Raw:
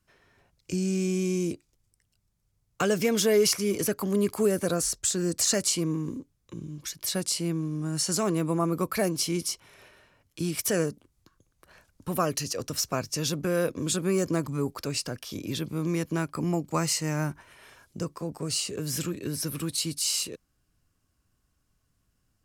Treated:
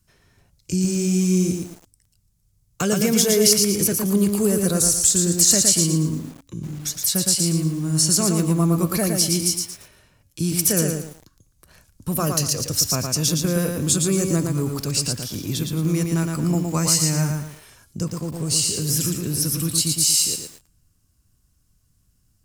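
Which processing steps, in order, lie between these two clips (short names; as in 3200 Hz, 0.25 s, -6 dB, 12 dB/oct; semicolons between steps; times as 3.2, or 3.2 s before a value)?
tone controls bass +10 dB, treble +11 dB; de-hum 278.5 Hz, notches 33; lo-fi delay 0.114 s, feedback 35%, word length 7-bit, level -4 dB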